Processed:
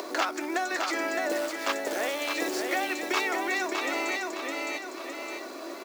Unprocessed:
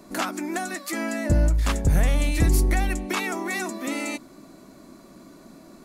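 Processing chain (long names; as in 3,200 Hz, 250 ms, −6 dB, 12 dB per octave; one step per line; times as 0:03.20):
low-pass filter 6,200 Hz 24 dB per octave
log-companded quantiser 6 bits
repeating echo 612 ms, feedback 28%, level −5 dB
upward compression, threshold −23 dBFS
Butterworth high-pass 340 Hz 36 dB per octave
single-tap delay 214 ms −20 dB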